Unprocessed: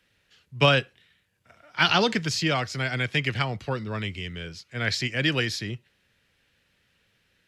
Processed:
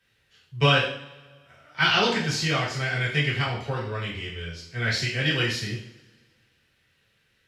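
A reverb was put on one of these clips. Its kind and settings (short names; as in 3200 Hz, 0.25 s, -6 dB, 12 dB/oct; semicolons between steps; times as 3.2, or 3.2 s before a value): two-slope reverb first 0.54 s, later 1.8 s, from -21 dB, DRR -6.5 dB; gain -6.5 dB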